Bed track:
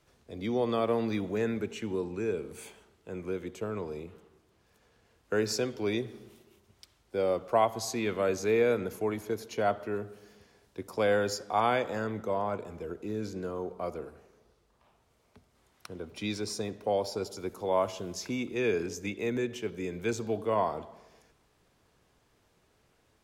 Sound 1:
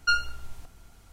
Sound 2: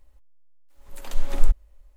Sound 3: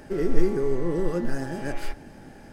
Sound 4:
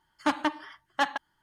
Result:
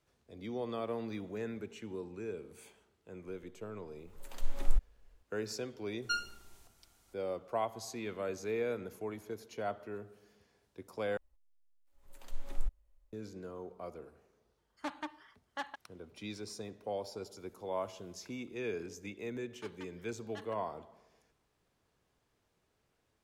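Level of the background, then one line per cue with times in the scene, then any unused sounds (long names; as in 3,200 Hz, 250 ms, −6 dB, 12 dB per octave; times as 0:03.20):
bed track −9.5 dB
0:03.27: mix in 2 −10 dB
0:06.02: mix in 1 −11.5 dB + bass and treble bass −8 dB, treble +6 dB
0:11.17: overwrite with 2 −16 dB
0:14.58: mix in 4 −14 dB + highs frequency-modulated by the lows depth 0.12 ms
0:19.36: mix in 4 −12.5 dB + guitar amp tone stack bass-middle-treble 5-5-5
not used: 3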